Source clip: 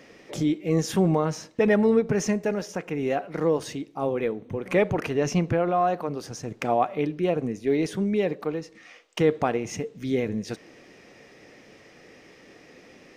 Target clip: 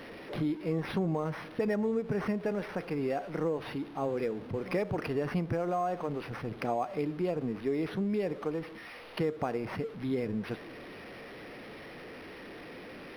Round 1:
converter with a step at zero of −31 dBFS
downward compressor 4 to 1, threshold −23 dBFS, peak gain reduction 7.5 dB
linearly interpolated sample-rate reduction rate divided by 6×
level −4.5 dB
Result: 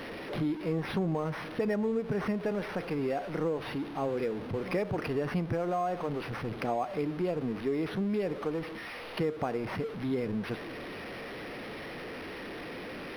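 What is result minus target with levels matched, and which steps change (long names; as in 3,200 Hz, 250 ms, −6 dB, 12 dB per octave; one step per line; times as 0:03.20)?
converter with a step at zero: distortion +6 dB
change: converter with a step at zero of −37.5 dBFS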